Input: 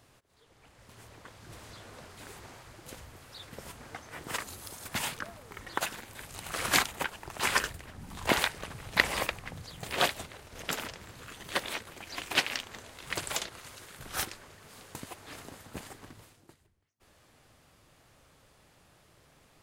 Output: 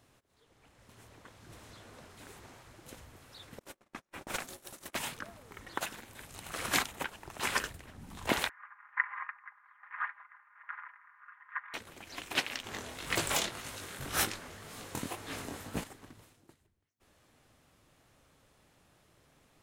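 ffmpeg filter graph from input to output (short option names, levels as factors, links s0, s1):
-filter_complex "[0:a]asettb=1/sr,asplit=3[s0][s1][s2];[s0]atrim=end=3.594[s3];[s1]atrim=start=3.59:end=4.97,asetpts=PTS-STARTPTS,afade=t=in:d=0.004:c=qsin,afade=t=out:st=1.376:d=0.004:c=qsin,agate=range=0.02:threshold=0.00501:ratio=16:release=100:detection=peak,acontrast=29,aeval=exprs='val(0)*sin(2*PI*460*n/s)':c=same[s4];[s2]atrim=start=4.966[s5];[s3][s4]acrossfade=d=0.004:c1=hsin:c2=qsin[s6];[s6][s5]acrossfade=d=0.004:c1=qsin:c2=hsin,asettb=1/sr,asplit=3[s7][s8][s9];[s7]atrim=end=8.494[s10];[s8]atrim=start=8.49:end=11.74,asetpts=PTS-STARTPTS,afade=t=in:d=0.004:c=qsin,afade=t=out:st=3.246:d=0.004:c=qsin,asuperpass=centerf=1400:order=8:qfactor=1.4,aecho=1:1:4.9:0.62,atrim=end_sample=143325[s11];[s9]atrim=start=11.736[s12];[s10][s11]acrossfade=d=0.004:c1=hsin:c2=qsin[s13];[s13][s12]acrossfade=d=0.004:c1=qsin:c2=hsin,asettb=1/sr,asplit=3[s14][s15][s16];[s14]atrim=end=12.644[s17];[s15]atrim=start=12.64:end=15.84,asetpts=PTS-STARTPTS,afade=t=in:d=0.004:c=qsin,afade=t=out:st=3.196:d=0.004:c=qsin,aeval=exprs='0.237*sin(PI/2*2.51*val(0)/0.237)':c=same,flanger=delay=17.5:depth=6.7:speed=1.9[s18];[s16]atrim=start=15.836[s19];[s17][s18]acrossfade=d=0.004:c1=hsin:c2=qsin[s20];[s20][s19]acrossfade=d=0.004:c1=qsin:c2=hsin,equalizer=f=260:t=o:w=0.85:g=3,bandreject=f=4700:w=22,volume=0.596"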